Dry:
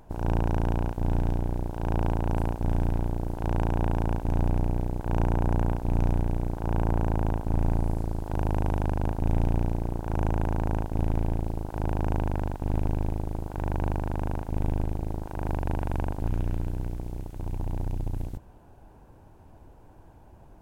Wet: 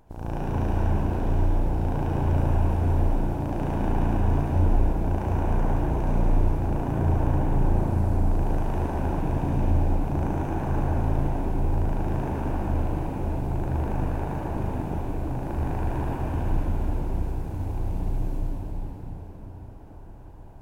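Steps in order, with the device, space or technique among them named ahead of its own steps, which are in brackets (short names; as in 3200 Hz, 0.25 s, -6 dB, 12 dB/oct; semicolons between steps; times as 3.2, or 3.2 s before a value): cathedral (reverb RT60 5.9 s, pre-delay 59 ms, DRR -7 dB); gain -5.5 dB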